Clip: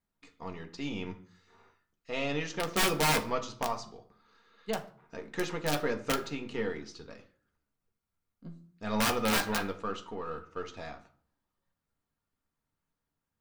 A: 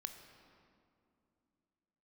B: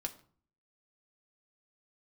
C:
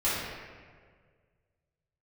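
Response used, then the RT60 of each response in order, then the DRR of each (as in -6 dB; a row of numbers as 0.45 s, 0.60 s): B; 2.5 s, 0.50 s, 1.8 s; 6.5 dB, 4.0 dB, -11.0 dB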